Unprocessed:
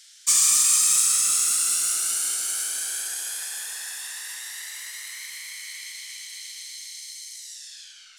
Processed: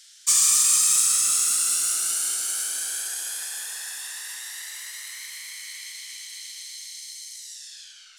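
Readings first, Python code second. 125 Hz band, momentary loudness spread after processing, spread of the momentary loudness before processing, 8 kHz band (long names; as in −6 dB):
can't be measured, 20 LU, 20 LU, 0.0 dB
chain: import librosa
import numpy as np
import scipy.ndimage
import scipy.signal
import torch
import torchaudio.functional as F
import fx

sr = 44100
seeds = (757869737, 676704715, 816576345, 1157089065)

y = fx.peak_eq(x, sr, hz=2200.0, db=-2.5, octaves=0.31)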